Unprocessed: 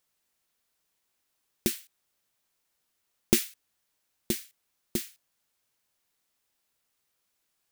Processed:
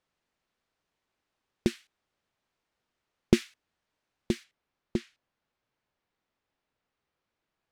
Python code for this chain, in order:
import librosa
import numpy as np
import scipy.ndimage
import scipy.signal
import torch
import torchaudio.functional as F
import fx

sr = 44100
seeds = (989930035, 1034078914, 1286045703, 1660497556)

y = fx.spacing_loss(x, sr, db_at_10k=fx.steps((0.0, 22.0), (4.43, 30.0)))
y = F.gain(torch.from_numpy(y), 4.0).numpy()